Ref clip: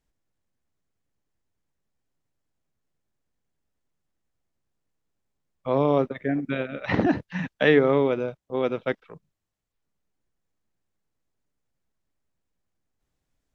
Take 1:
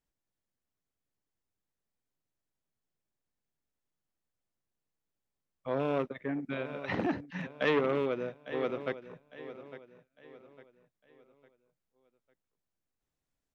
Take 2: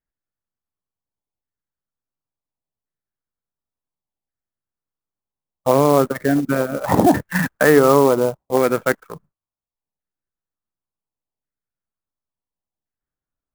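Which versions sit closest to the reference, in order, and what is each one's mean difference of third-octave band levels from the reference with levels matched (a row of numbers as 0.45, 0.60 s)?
1, 2; 3.0, 8.0 dB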